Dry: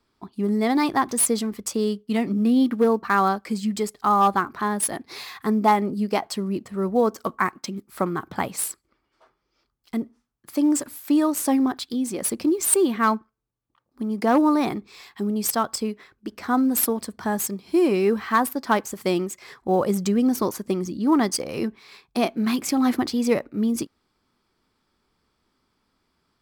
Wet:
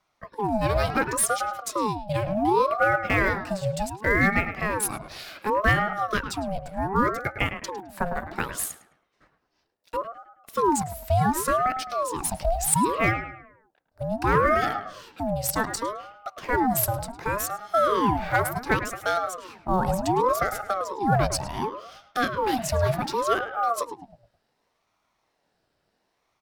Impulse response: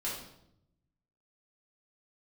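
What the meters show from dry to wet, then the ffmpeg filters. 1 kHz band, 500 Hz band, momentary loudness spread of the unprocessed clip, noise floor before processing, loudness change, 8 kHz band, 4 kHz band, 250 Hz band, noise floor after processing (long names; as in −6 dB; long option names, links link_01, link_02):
+0.5 dB, −1.5 dB, 11 LU, −73 dBFS, −2.0 dB, −3.0 dB, −2.0 dB, −9.0 dB, −74 dBFS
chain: -filter_complex "[0:a]asplit=2[link_01][link_02];[link_02]adelay=106,lowpass=frequency=2000:poles=1,volume=-9dB,asplit=2[link_03][link_04];[link_04]adelay=106,lowpass=frequency=2000:poles=1,volume=0.44,asplit=2[link_05][link_06];[link_06]adelay=106,lowpass=frequency=2000:poles=1,volume=0.44,asplit=2[link_07][link_08];[link_08]adelay=106,lowpass=frequency=2000:poles=1,volume=0.44,asplit=2[link_09][link_10];[link_10]adelay=106,lowpass=frequency=2000:poles=1,volume=0.44[link_11];[link_01][link_03][link_05][link_07][link_09][link_11]amix=inputs=6:normalize=0,aeval=exprs='val(0)*sin(2*PI*690*n/s+690*0.5/0.68*sin(2*PI*0.68*n/s))':channel_layout=same"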